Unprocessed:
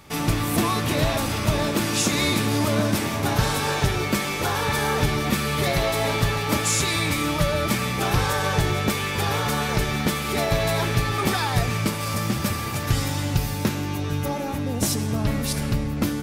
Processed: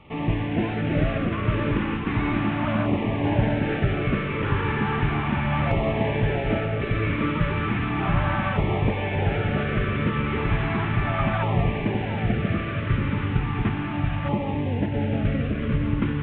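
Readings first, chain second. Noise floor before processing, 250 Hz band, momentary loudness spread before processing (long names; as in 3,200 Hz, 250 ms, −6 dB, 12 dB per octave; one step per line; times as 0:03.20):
−28 dBFS, +0.5 dB, 4 LU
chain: variable-slope delta modulation 16 kbit/s
delay that swaps between a low-pass and a high-pass 682 ms, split 1,100 Hz, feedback 64%, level −2.5 dB
auto-filter notch saw down 0.35 Hz 400–1,600 Hz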